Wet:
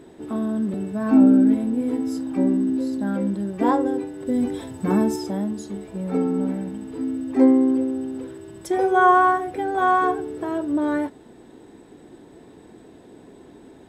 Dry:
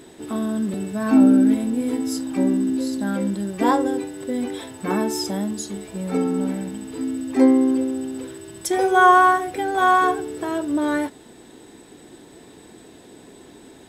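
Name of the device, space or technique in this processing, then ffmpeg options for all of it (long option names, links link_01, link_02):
through cloth: -filter_complex "[0:a]highshelf=frequency=2100:gain=-12.5,asettb=1/sr,asplit=3[link_01][link_02][link_03];[link_01]atrim=end=4.264[link_04];[link_02]atrim=start=4.26:end=5.16,asetpts=PTS-STARTPTS,afade=type=in:duration=0.004:curve=qsin,afade=type=out:start_time=0.896:duration=0.004:curve=qsin,bass=frequency=250:gain=8,treble=frequency=4000:gain=7[link_05];[link_03]atrim=start=5.156[link_06];[link_04][link_05]acrossfade=duration=0.004:curve1=hsin:curve2=qsin[link_07];[link_07][link_06]acrossfade=duration=0.004:curve1=qsin:curve2=hsin"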